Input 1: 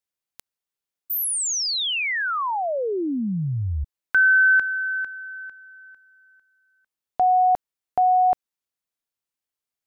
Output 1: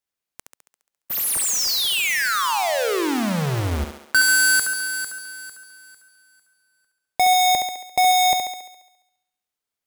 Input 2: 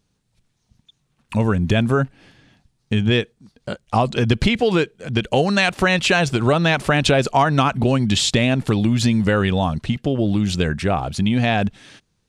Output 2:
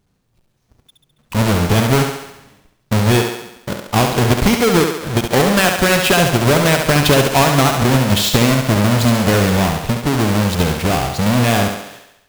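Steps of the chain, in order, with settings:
each half-wave held at its own peak
on a send: feedback echo with a high-pass in the loop 69 ms, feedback 59%, high-pass 200 Hz, level −5 dB
on the sum: level −1.5 dB

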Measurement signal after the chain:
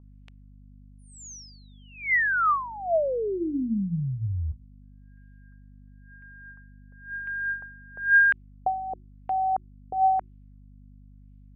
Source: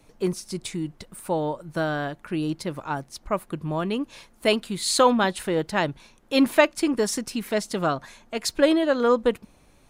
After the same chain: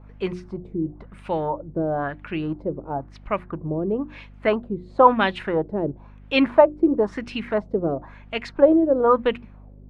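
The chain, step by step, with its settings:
mains hum 50 Hz, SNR 20 dB
auto-filter low-pass sine 0.99 Hz 410–2,800 Hz
mains-hum notches 60/120/180/240/300/360 Hz

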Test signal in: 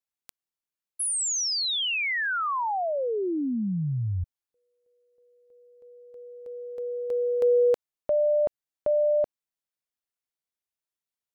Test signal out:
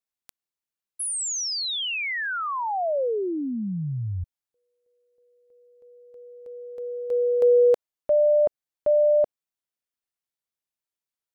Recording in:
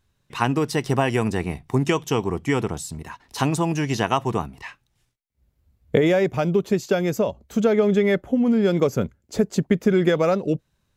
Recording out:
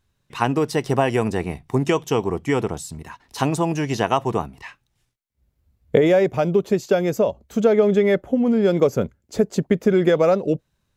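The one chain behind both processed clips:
dynamic equaliser 560 Hz, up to +5 dB, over −31 dBFS, Q 0.99
level −1 dB

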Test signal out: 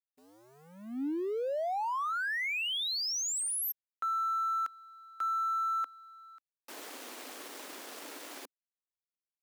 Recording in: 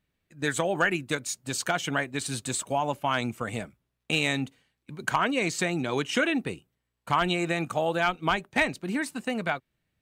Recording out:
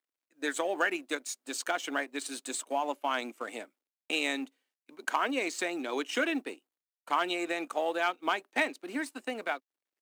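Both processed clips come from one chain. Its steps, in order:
mu-law and A-law mismatch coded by A
elliptic high-pass filter 270 Hz, stop band 80 dB
level −3 dB

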